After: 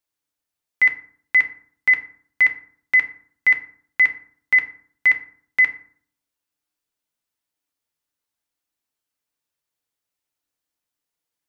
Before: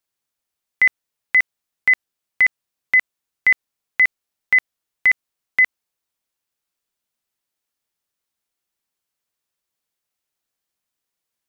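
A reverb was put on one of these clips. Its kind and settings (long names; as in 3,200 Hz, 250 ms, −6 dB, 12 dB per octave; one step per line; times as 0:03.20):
feedback delay network reverb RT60 0.53 s, low-frequency decay 1.3×, high-frequency decay 0.55×, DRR 4.5 dB
level −3.5 dB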